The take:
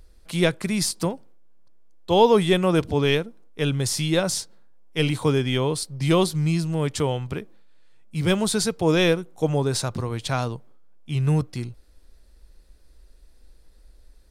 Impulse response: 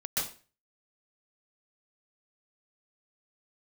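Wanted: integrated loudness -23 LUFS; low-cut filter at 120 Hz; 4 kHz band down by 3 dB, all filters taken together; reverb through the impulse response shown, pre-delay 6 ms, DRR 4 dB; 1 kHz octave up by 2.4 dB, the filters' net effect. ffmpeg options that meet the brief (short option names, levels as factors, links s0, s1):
-filter_complex "[0:a]highpass=120,equalizer=f=1000:t=o:g=3,equalizer=f=4000:t=o:g=-4,asplit=2[s0][s1];[1:a]atrim=start_sample=2205,adelay=6[s2];[s1][s2]afir=irnorm=-1:irlink=0,volume=0.316[s3];[s0][s3]amix=inputs=2:normalize=0,volume=0.841"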